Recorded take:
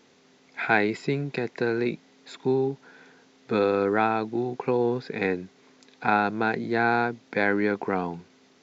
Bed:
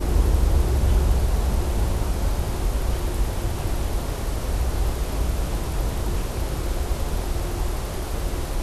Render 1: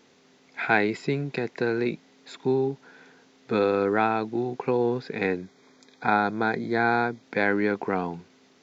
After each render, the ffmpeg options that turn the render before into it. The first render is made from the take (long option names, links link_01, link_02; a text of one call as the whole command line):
ffmpeg -i in.wav -filter_complex "[0:a]asettb=1/sr,asplit=3[link_01][link_02][link_03];[link_01]atrim=end=5.384[link_04];[link_02]atrim=start=5.38:end=7.23,asetpts=PTS-STARTPTS,afade=type=in:duration=0.004:curve=qsin,afade=type=out:start_time=1.846:duration=0.004:curve=qsin,asuperstop=centerf=2800:order=20:qfactor=4.6[link_05];[link_03]atrim=start=7.226[link_06];[link_04][link_05]acrossfade=duration=0.004:curve1=hsin:curve2=qsin[link_07];[link_07][link_06]acrossfade=duration=0.004:curve1=qsin:curve2=hsin" out.wav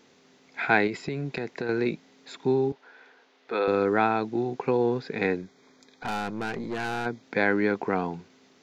ffmpeg -i in.wav -filter_complex "[0:a]asettb=1/sr,asplit=3[link_01][link_02][link_03];[link_01]atrim=end=0.874[link_04];[link_02]atrim=start=0.87:end=1.69,asetpts=PTS-STARTPTS,afade=type=in:duration=0.004:curve=qsin,afade=type=out:start_time=0.816:duration=0.004:curve=qsin,acompressor=threshold=-26dB:ratio=6:attack=3.2:release=140:knee=1:detection=peak[link_05];[link_03]atrim=start=1.686[link_06];[link_04][link_05]acrossfade=duration=0.004:curve1=hsin:curve2=qsin[link_07];[link_07][link_06]acrossfade=duration=0.004:curve1=qsin:curve2=hsin,asettb=1/sr,asplit=3[link_08][link_09][link_10];[link_08]atrim=end=2.724[link_11];[link_09]atrim=start=2.72:end=3.68,asetpts=PTS-STARTPTS,afade=type=in:duration=0.004:curve=qsin,afade=type=out:start_time=0.956:duration=0.004:curve=qsin,highpass=470,lowpass=4000[link_12];[link_10]atrim=start=3.676[link_13];[link_11][link_12]acrossfade=duration=0.004:curve1=hsin:curve2=qsin[link_14];[link_14][link_13]acrossfade=duration=0.004:curve1=qsin:curve2=hsin,asplit=3[link_15][link_16][link_17];[link_15]afade=type=out:start_time=5.41:duration=0.02[link_18];[link_16]aeval=exprs='(tanh(22.4*val(0)+0.4)-tanh(0.4))/22.4':channel_layout=same,afade=type=in:start_time=5.41:duration=0.02,afade=type=out:start_time=7.05:duration=0.02[link_19];[link_17]afade=type=in:start_time=7.05:duration=0.02[link_20];[link_18][link_19][link_20]amix=inputs=3:normalize=0" out.wav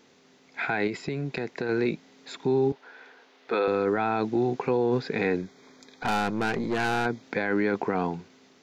ffmpeg -i in.wav -af "dynaudnorm=framelen=860:gausssize=5:maxgain=5dB,alimiter=limit=-16.5dB:level=0:latency=1:release=12" out.wav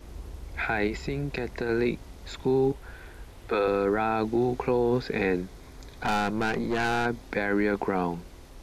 ffmpeg -i in.wav -i bed.wav -filter_complex "[1:a]volume=-21.5dB[link_01];[0:a][link_01]amix=inputs=2:normalize=0" out.wav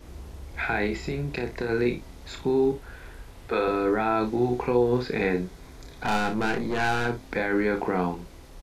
ffmpeg -i in.wav -filter_complex "[0:a]asplit=2[link_01][link_02];[link_02]adelay=27,volume=-12dB[link_03];[link_01][link_03]amix=inputs=2:normalize=0,aecho=1:1:33|57:0.398|0.251" out.wav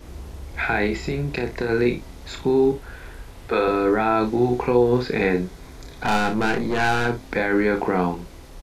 ffmpeg -i in.wav -af "volume=4.5dB" out.wav